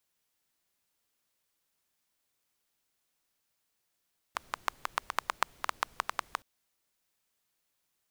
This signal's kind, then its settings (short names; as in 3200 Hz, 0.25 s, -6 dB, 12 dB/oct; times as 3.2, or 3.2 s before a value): rain from filtered ticks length 2.07 s, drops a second 7.9, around 1100 Hz, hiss -22 dB